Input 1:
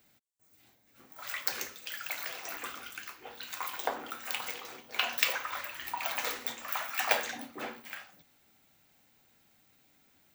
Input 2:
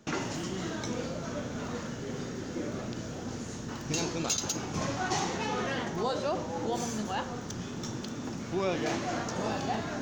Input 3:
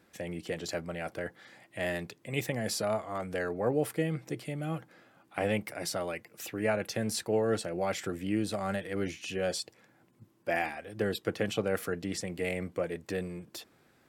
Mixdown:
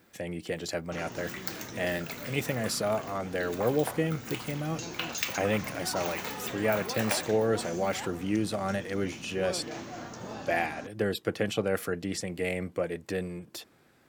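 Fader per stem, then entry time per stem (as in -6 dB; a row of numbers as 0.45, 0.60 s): -4.5, -8.0, +2.0 dB; 0.00, 0.85, 0.00 s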